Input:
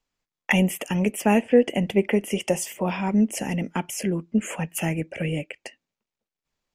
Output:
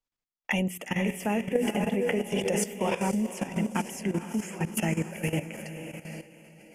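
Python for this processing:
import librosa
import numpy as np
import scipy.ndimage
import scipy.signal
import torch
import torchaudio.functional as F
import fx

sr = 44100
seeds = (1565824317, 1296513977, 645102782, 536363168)

y = fx.hum_notches(x, sr, base_hz=60, count=7)
y = fx.echo_diffused(y, sr, ms=483, feedback_pct=49, wet_db=-6.5)
y = fx.noise_reduce_blind(y, sr, reduce_db=8)
y = fx.level_steps(y, sr, step_db=13)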